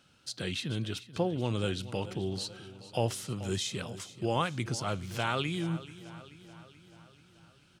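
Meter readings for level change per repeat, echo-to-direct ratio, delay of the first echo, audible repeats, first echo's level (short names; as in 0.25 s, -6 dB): -4.5 dB, -14.0 dB, 0.433 s, 5, -16.0 dB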